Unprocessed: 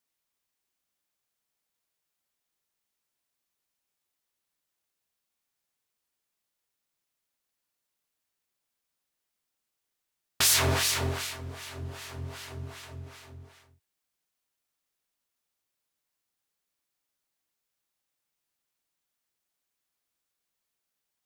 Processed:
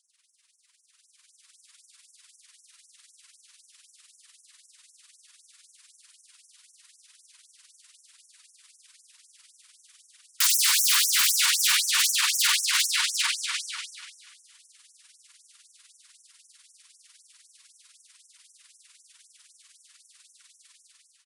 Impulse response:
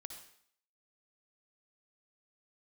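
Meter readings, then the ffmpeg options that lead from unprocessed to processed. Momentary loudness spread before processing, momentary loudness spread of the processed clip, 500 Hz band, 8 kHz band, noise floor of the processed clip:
20 LU, 12 LU, under -40 dB, +9.0 dB, -65 dBFS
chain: -filter_complex "[0:a]tremolo=f=20:d=0.75,tiltshelf=f=1.2k:g=-7.5,acompressor=threshold=-35dB:ratio=12,asplit=2[a][b];[b]equalizer=f=6.5k:t=o:w=0.64:g=-8[c];[1:a]atrim=start_sample=2205,adelay=96[d];[c][d]afir=irnorm=-1:irlink=0,volume=4.5dB[e];[a][e]amix=inputs=2:normalize=0,aphaser=in_gain=1:out_gain=1:delay=4.9:decay=0.33:speed=0.98:type=triangular,aresample=22050,aresample=44100,dynaudnorm=f=800:g=3:m=12dB,aecho=1:1:242|484|726|968:0.447|0.165|0.0612|0.0226,aeval=exprs='0.398*sin(PI/2*7.94*val(0)/0.398)':c=same,afftfilt=real='re*gte(b*sr/1024,890*pow(5600/890,0.5+0.5*sin(2*PI*3.9*pts/sr)))':imag='im*gte(b*sr/1024,890*pow(5600/890,0.5+0.5*sin(2*PI*3.9*pts/sr)))':win_size=1024:overlap=0.75,volume=-9dB"

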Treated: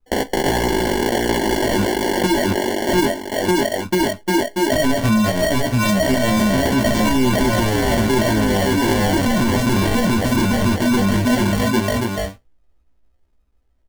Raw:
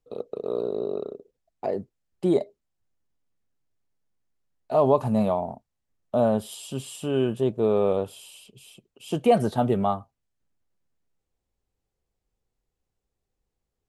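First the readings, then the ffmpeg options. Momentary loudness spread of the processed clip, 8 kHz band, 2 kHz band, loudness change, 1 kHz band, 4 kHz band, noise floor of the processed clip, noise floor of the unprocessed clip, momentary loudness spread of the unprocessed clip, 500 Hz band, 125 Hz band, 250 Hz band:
3 LU, +20.0 dB, +25.0 dB, +7.5 dB, +9.5 dB, +20.0 dB, -60 dBFS, -83 dBFS, 14 LU, +6.0 dB, +13.0 dB, +13.0 dB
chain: -filter_complex "[0:a]agate=range=-17dB:threshold=-45dB:ratio=16:detection=peak,highshelf=f=8.3k:g=6,bandreject=f=910:w=5.9,aecho=1:1:3.4:0.98,asplit=2[a][b];[b]aecho=0:1:690|1242|1684|2037|2320:0.631|0.398|0.251|0.158|0.1[c];[a][c]amix=inputs=2:normalize=0,acompressor=threshold=-20dB:ratio=6,asoftclip=type=tanh:threshold=-26.5dB,lowshelf=f=110:g=10,acrossover=split=330|3000[d][e][f];[e]acompressor=threshold=-41dB:ratio=6[g];[d][g][f]amix=inputs=3:normalize=0,acrusher=samples=35:mix=1:aa=0.000001,flanger=delay=15:depth=7.4:speed=0.15,alimiter=level_in=33dB:limit=-1dB:release=50:level=0:latency=1,volume=-9dB"

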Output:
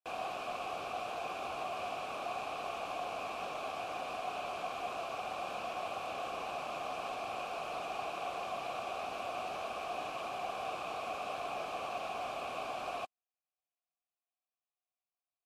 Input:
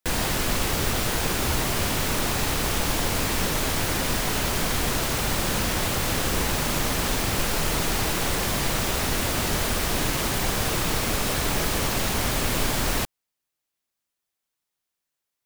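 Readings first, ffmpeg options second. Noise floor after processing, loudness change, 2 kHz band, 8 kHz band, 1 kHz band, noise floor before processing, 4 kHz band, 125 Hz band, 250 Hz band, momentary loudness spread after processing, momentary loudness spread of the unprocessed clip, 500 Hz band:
under -85 dBFS, -15.5 dB, -16.0 dB, -29.0 dB, -7.0 dB, -84 dBFS, -19.5 dB, -31.0 dB, -23.0 dB, 1 LU, 0 LU, -10.0 dB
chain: -filter_complex "[0:a]asplit=3[a][b][c];[a]bandpass=f=730:t=q:w=8,volume=0dB[d];[b]bandpass=f=1.09k:t=q:w=8,volume=-6dB[e];[c]bandpass=f=2.44k:t=q:w=8,volume=-9dB[f];[d][e][f]amix=inputs=3:normalize=0" -ar 32000 -c:a libmp3lame -b:a 64k

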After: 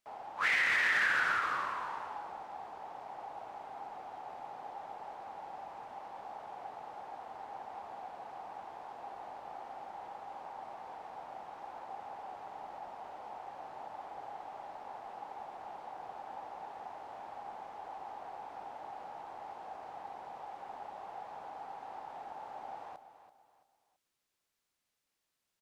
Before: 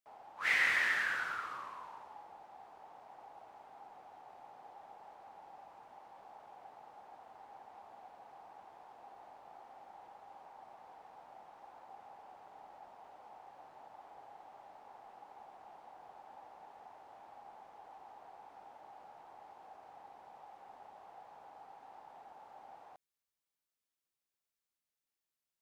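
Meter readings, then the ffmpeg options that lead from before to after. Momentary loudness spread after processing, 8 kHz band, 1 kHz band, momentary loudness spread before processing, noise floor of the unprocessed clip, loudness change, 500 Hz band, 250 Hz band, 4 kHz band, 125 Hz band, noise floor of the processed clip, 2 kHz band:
14 LU, n/a, +8.5 dB, 23 LU, under -85 dBFS, -6.5 dB, +8.5 dB, +7.5 dB, +2.5 dB, +7.0 dB, -85 dBFS, +3.0 dB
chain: -filter_complex "[0:a]highshelf=f=11k:g=-9.5,alimiter=level_in=6dB:limit=-24dB:level=0:latency=1:release=52,volume=-6dB,asplit=2[a][b];[b]aecho=0:1:334|668|1002:0.237|0.0806|0.0274[c];[a][c]amix=inputs=2:normalize=0,volume=9dB"

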